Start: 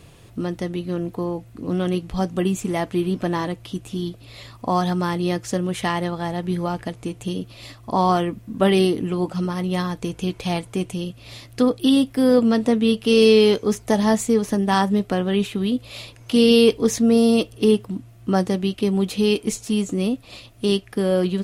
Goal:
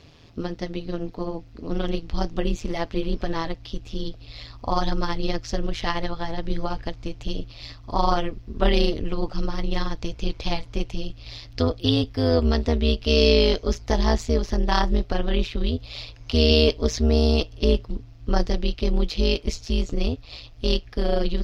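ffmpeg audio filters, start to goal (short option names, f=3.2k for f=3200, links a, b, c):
-af "highshelf=f=6.9k:t=q:w=3:g=-12,tremolo=f=160:d=0.824,asubboost=boost=6.5:cutoff=70"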